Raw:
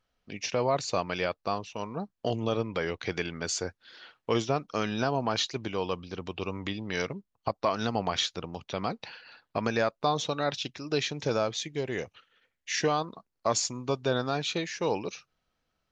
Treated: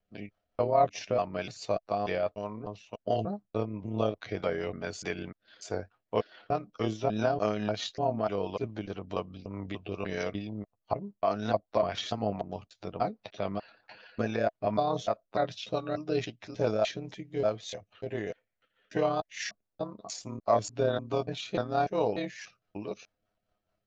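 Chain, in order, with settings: slices in reverse order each 0.197 s, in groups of 2; high shelf 2600 Hz -8 dB; rotary speaker horn 7 Hz; bell 660 Hz +9.5 dB 0.33 oct; granular stretch 1.5×, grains 58 ms; gain +1 dB

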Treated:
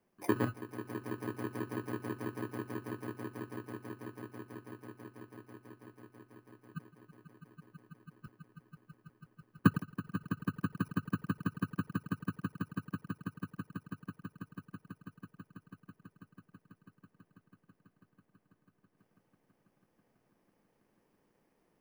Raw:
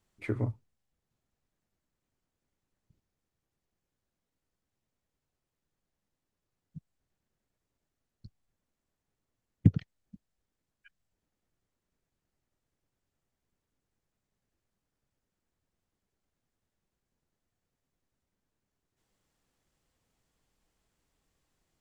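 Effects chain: FFT order left unsorted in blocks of 32 samples; in parallel at +2.5 dB: compressor, threshold -36 dBFS, peak gain reduction 19.5 dB; on the sum: three-band isolator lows -21 dB, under 170 Hz, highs -17 dB, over 2100 Hz; swelling echo 0.164 s, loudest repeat 8, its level -10 dB; gain +1.5 dB

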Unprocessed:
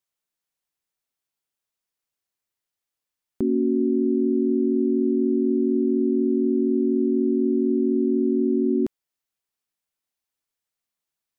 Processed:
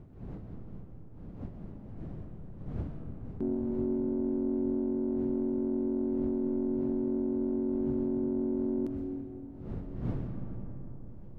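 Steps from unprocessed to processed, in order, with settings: one diode to ground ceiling -14.5 dBFS; wind noise 180 Hz -36 dBFS; digital reverb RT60 4.2 s, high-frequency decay 0.3×, pre-delay 85 ms, DRR 4.5 dB; gain -8.5 dB

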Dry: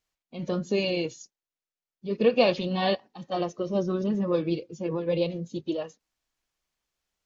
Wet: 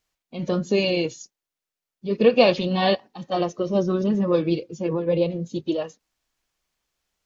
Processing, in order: 4.93–5.4 high shelf 2500 Hz -9.5 dB; gain +5 dB

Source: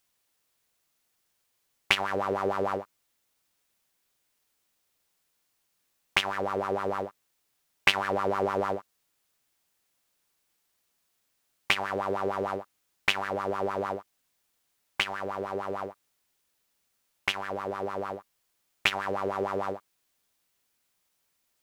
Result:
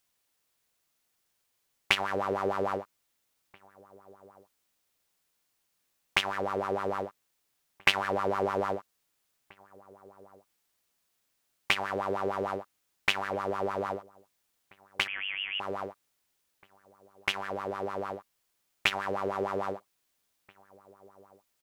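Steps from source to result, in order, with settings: outdoor echo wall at 280 m, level -23 dB; 15.07–15.6 inverted band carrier 3300 Hz; gain -1.5 dB

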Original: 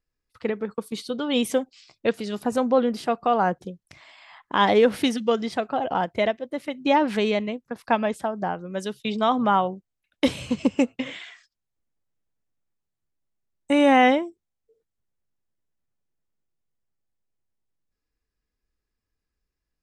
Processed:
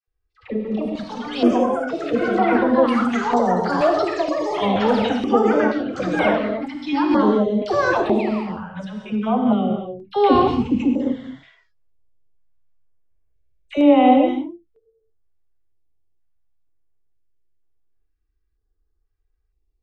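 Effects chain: tilt -1.5 dB/oct; envelope flanger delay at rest 2.6 ms, full sweep at -16.5 dBFS; painted sound fall, 8.18–8.4, 800–2800 Hz -31 dBFS; dispersion lows, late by 76 ms, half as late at 770 Hz; reverb, pre-delay 3 ms, DRR 2 dB; echoes that change speed 0.422 s, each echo +6 st, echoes 3; air absorption 120 m; stepped notch 2.1 Hz 220–6600 Hz; gain +2 dB

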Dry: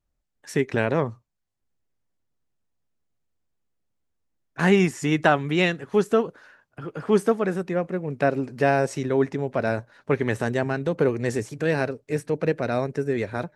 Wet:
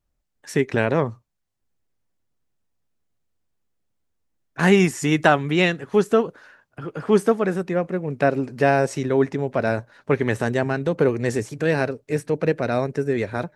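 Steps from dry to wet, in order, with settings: 4.63–5.36 high shelf 6400 Hz +6 dB; gain +2.5 dB

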